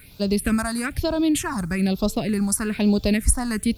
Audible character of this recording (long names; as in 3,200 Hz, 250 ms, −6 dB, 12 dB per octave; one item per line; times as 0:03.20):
a quantiser's noise floor 10 bits, dither triangular
phaser sweep stages 4, 1.1 Hz, lowest notch 450–1,900 Hz